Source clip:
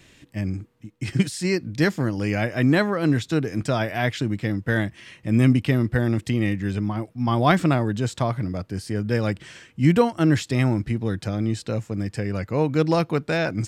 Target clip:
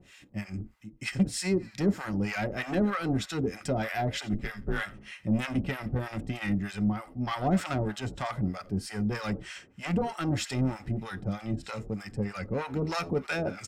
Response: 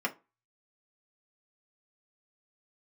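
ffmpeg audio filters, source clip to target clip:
-filter_complex "[0:a]asettb=1/sr,asplit=3[a][b][c];[a]atrim=end=4.334[d];[b]atrim=start=4.33:end=4.83,asetpts=PTS-STARTPTS,afade=t=in:d=0.004:c=qsin,afade=t=out:st=0.496:d=0.004:c=qsin,afreqshift=-87[e];[c]atrim=start=4.826[f];[d][e]acrossfade=d=0.004:c1=hsin:c2=qsin[g];[g][f]acrossfade=d=0.004:c1=qsin:c2=hsin,asoftclip=type=tanh:threshold=-18.5dB,asplit=4[h][i][j][k];[i]adelay=87,afreqshift=-78,volume=-17.5dB[l];[j]adelay=174,afreqshift=-156,volume=-25.5dB[m];[k]adelay=261,afreqshift=-234,volume=-33.4dB[n];[h][l][m][n]amix=inputs=4:normalize=0,asplit=2[o][p];[1:a]atrim=start_sample=2205[q];[p][q]afir=irnorm=-1:irlink=0,volume=-11.5dB[r];[o][r]amix=inputs=2:normalize=0,acrossover=split=740[s][t];[s]aeval=exprs='val(0)*(1-1/2+1/2*cos(2*PI*3.2*n/s))':c=same[u];[t]aeval=exprs='val(0)*(1-1/2-1/2*cos(2*PI*3.2*n/s))':c=same[v];[u][v]amix=inputs=2:normalize=0"

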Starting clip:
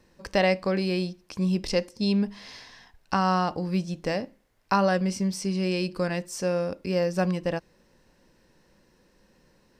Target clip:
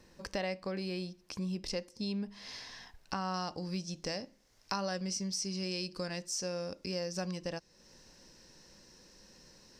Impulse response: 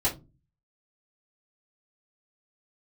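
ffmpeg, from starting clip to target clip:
-af "asetnsamples=n=441:p=0,asendcmd='3.34 equalizer g 14.5',equalizer=f=5.6k:w=1.2:g=4.5,acompressor=threshold=-44dB:ratio=2"

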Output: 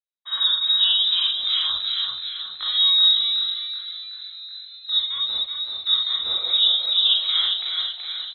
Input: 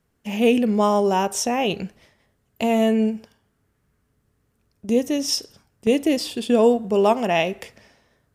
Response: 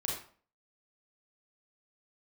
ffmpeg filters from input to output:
-filter_complex "[0:a]lowpass=f=3.4k:t=q:w=0.5098,lowpass=f=3.4k:t=q:w=0.6013,lowpass=f=3.4k:t=q:w=0.9,lowpass=f=3.4k:t=q:w=2.563,afreqshift=-4000,acrossover=split=220|3000[a][b][c];[b]acompressor=threshold=-31dB:ratio=6[d];[a][d][c]amix=inputs=3:normalize=0,asplit=9[e][f][g][h][i][j][k][l][m];[f]adelay=376,afreqshift=56,volume=-4dB[n];[g]adelay=752,afreqshift=112,volume=-8.6dB[o];[h]adelay=1128,afreqshift=168,volume=-13.2dB[p];[i]adelay=1504,afreqshift=224,volume=-17.7dB[q];[j]adelay=1880,afreqshift=280,volume=-22.3dB[r];[k]adelay=2256,afreqshift=336,volume=-26.9dB[s];[l]adelay=2632,afreqshift=392,volume=-31.5dB[t];[m]adelay=3008,afreqshift=448,volume=-36.1dB[u];[e][n][o][p][q][r][s][t][u]amix=inputs=9:normalize=0,agate=range=-33dB:threshold=-49dB:ratio=3:detection=peak,equalizer=f=73:w=0.88:g=4.5[v];[1:a]atrim=start_sample=2205,atrim=end_sample=3969[w];[v][w]afir=irnorm=-1:irlink=0,volume=-5dB"

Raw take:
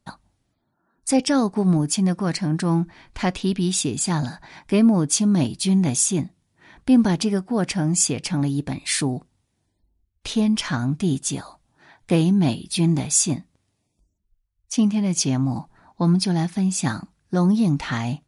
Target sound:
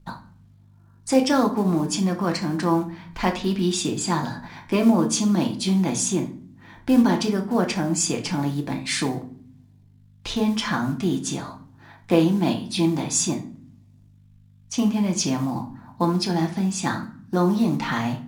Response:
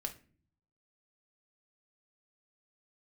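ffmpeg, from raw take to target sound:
-filter_complex "[0:a]equalizer=f=250:t=o:w=0.67:g=4,equalizer=f=1k:t=o:w=0.67:g=5,equalizer=f=10k:t=o:w=0.67:g=-10,acrossover=split=250[a][b];[a]acompressor=threshold=-33dB:ratio=5[c];[c][b]amix=inputs=2:normalize=0,aeval=exprs='val(0)+0.00282*(sin(2*PI*50*n/s)+sin(2*PI*2*50*n/s)/2+sin(2*PI*3*50*n/s)/3+sin(2*PI*4*50*n/s)/4+sin(2*PI*5*50*n/s)/5)':c=same,acrusher=bits=7:mode=log:mix=0:aa=0.000001[d];[1:a]atrim=start_sample=2205,asetrate=33957,aresample=44100[e];[d][e]afir=irnorm=-1:irlink=0"

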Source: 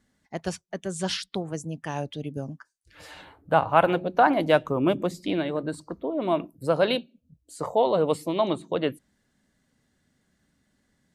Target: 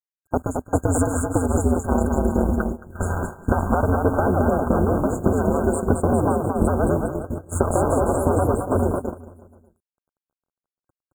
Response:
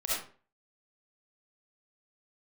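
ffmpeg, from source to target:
-filter_complex "[0:a]aeval=exprs='if(lt(val(0),0),0.251*val(0),val(0))':c=same,acompressor=threshold=-33dB:ratio=12,lowshelf=f=240:g=-8.5,apsyclip=32dB,afftdn=nr=31:nf=-29,bass=f=250:g=11,treble=f=4k:g=-3,acrossover=split=640|2900[a][b][c];[a]acompressor=threshold=-15dB:ratio=4[d];[b]acompressor=threshold=-25dB:ratio=4[e];[c]acompressor=threshold=-25dB:ratio=4[f];[d][e][f]amix=inputs=3:normalize=0,acrusher=bits=6:mix=0:aa=0.000001,aeval=exprs='val(0)*sin(2*PI*88*n/s)':c=same,aecho=1:1:220|407|566|701.1|815.9:0.631|0.398|0.251|0.158|0.1,agate=range=-15dB:threshold=-21dB:ratio=16:detection=peak,afftfilt=real='re*(1-between(b*sr/4096,1600,6600))':imag='im*(1-between(b*sr/4096,1600,6600))':win_size=4096:overlap=0.75,volume=-1dB"

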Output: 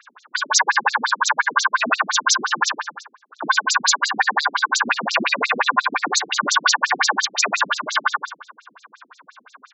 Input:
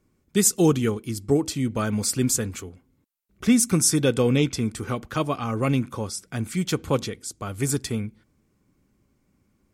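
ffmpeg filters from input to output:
-filter_complex "[0:a]lowshelf=f=170:g=-7,aeval=exprs='val(0)*sin(2*PI*1300*n/s)':c=same,acrossover=split=200|1300[a][b][c];[c]asoftclip=type=tanh:threshold=-13.5dB[d];[a][b][d]amix=inputs=3:normalize=0,lowpass=7.7k,equalizer=f=83:t=o:w=2.3:g=-8,asplit=2[e][f];[f]volume=28.5dB,asoftclip=hard,volume=-28.5dB,volume=-10.5dB[g];[e][g]amix=inputs=2:normalize=0,bandreject=f=196.1:t=h:w=4,bandreject=f=392.2:t=h:w=4,bandreject=f=588.3:t=h:w=4,bandreject=f=784.4:t=h:w=4,bandreject=f=980.5:t=h:w=4,bandreject=f=1.1766k:t=h:w=4,bandreject=f=1.3727k:t=h:w=4,bandreject=f=1.5688k:t=h:w=4,bandreject=f=1.7649k:t=h:w=4,bandreject=f=1.961k:t=h:w=4,bandreject=f=2.1571k:t=h:w=4,bandreject=f=2.3532k:t=h:w=4,bandreject=f=2.5493k:t=h:w=4,bandreject=f=2.7454k:t=h:w=4,bandreject=f=2.9415k:t=h:w=4,bandreject=f=3.1376k:t=h:w=4,bandreject=f=3.3337k:t=h:w=4,bandreject=f=3.5298k:t=h:w=4,bandreject=f=3.7259k:t=h:w=4,bandreject=f=3.922k:t=h:w=4,bandreject=f=4.1181k:t=h:w=4,bandreject=f=4.3142k:t=h:w=4,bandreject=f=4.5103k:t=h:w=4,bandreject=f=4.7064k:t=h:w=4,bandreject=f=4.9025k:t=h:w=4,bandreject=f=5.0986k:t=h:w=4,bandreject=f=5.2947k:t=h:w=4,bandreject=f=5.4908k:t=h:w=4,bandreject=f=5.6869k:t=h:w=4,acompressor=threshold=-37dB:ratio=3,aecho=1:1:108|216|324|432|540:0.596|0.238|0.0953|0.0381|0.0152,alimiter=level_in=31.5dB:limit=-1dB:release=50:level=0:latency=1,afftfilt=real='re*between(b*sr/1024,230*pow(5600/230,0.5+0.5*sin(2*PI*5.7*pts/sr))/1.41,230*pow(5600/230,0.5+0.5*sin(2*PI*5.7*pts/sr))*1.41)':imag='im*between(b*sr/1024,230*pow(5600/230,0.5+0.5*sin(2*PI*5.7*pts/sr))/1.41,230*pow(5600/230,0.5+0.5*sin(2*PI*5.7*pts/sr))*1.41)':win_size=1024:overlap=0.75"

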